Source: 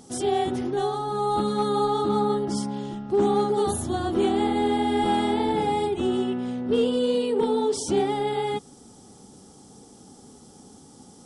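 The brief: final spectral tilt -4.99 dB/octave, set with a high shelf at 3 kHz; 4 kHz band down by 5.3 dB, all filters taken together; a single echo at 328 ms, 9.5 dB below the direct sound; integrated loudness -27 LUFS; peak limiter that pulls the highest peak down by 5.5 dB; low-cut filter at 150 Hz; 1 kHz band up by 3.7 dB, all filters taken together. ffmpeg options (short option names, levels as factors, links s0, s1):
-af "highpass=150,equalizer=f=1000:t=o:g=5.5,highshelf=f=3000:g=-5,equalizer=f=4000:t=o:g=-3.5,alimiter=limit=0.158:level=0:latency=1,aecho=1:1:328:0.335,volume=0.75"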